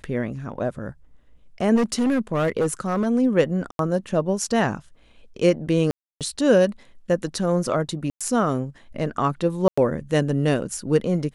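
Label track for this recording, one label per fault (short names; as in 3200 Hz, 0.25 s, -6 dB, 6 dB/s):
1.750000	3.070000	clipped -17 dBFS
3.710000	3.790000	gap 82 ms
5.910000	6.210000	gap 0.297 s
8.100000	8.210000	gap 0.106 s
9.680000	9.780000	gap 95 ms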